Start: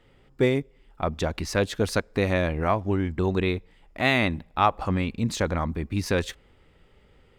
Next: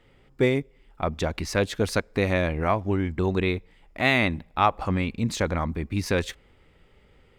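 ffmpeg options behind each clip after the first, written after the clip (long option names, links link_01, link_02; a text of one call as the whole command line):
ffmpeg -i in.wav -af "equalizer=frequency=2200:width_type=o:width=0.28:gain=3" out.wav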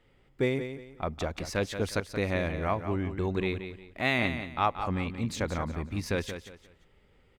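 ffmpeg -i in.wav -af "aecho=1:1:178|356|534:0.335|0.0971|0.0282,volume=-6dB" out.wav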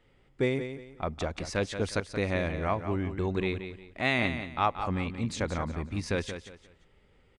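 ffmpeg -i in.wav -af "aresample=22050,aresample=44100" out.wav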